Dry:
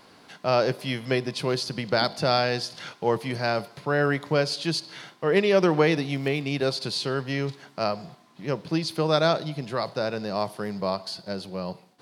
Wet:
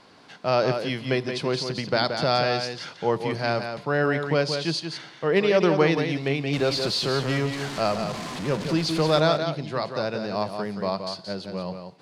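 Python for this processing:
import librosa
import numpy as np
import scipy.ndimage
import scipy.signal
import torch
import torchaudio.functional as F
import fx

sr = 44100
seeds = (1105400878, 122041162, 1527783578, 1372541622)

y = fx.zero_step(x, sr, step_db=-28.5, at=(6.53, 9.2))
y = scipy.signal.sosfilt(scipy.signal.butter(2, 7500.0, 'lowpass', fs=sr, output='sos'), y)
y = y + 10.0 ** (-7.0 / 20.0) * np.pad(y, (int(176 * sr / 1000.0), 0))[:len(y)]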